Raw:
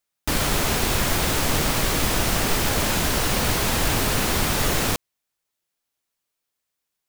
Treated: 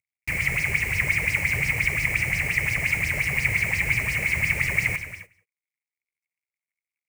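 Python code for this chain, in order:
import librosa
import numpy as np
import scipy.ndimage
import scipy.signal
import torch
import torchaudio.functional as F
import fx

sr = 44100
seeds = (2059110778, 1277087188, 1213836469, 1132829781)

p1 = fx.cvsd(x, sr, bps=64000)
p2 = fx.curve_eq(p1, sr, hz=(140.0, 240.0, 900.0, 1500.0, 2200.0, 3500.0, 8500.0), db=(0, -17, -18, -16, 12, -25, -4))
p3 = np.repeat(scipy.signal.resample_poly(p2, 1, 2), 2)[:len(p2)]
p4 = scipy.signal.sosfilt(scipy.signal.butter(2, 73.0, 'highpass', fs=sr, output='sos'), p3)
p5 = p4 + fx.echo_single(p4, sr, ms=183, db=-23.0, dry=0)
p6 = fx.rev_gated(p5, sr, seeds[0], gate_ms=320, shape='flat', drr_db=8.5)
p7 = fx.bell_lfo(p6, sr, hz=5.7, low_hz=430.0, high_hz=5400.0, db=13)
y = F.gain(torch.from_numpy(p7), -1.5).numpy()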